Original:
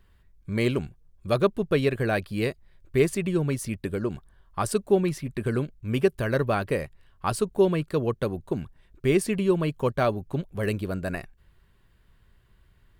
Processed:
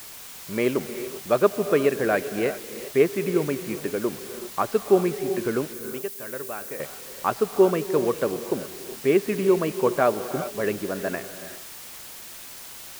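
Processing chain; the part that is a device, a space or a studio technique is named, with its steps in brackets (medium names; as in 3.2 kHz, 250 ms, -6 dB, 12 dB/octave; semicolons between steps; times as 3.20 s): wax cylinder (band-pass 270–2100 Hz; wow and flutter; white noise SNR 16 dB); 5.73–6.80 s: pre-emphasis filter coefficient 0.8; gated-style reverb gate 430 ms rising, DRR 10.5 dB; trim +4 dB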